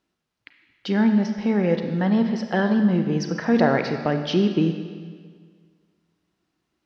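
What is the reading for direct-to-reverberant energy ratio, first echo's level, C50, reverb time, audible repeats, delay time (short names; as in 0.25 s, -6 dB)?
6.0 dB, none, 7.0 dB, 1.8 s, none, none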